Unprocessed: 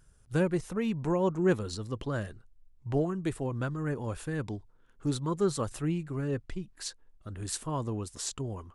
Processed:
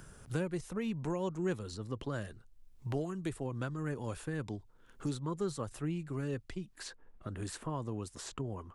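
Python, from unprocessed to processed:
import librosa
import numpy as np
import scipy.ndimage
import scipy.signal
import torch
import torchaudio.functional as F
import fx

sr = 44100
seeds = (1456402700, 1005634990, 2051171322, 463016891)

y = fx.band_squash(x, sr, depth_pct=70)
y = F.gain(torch.from_numpy(y), -6.0).numpy()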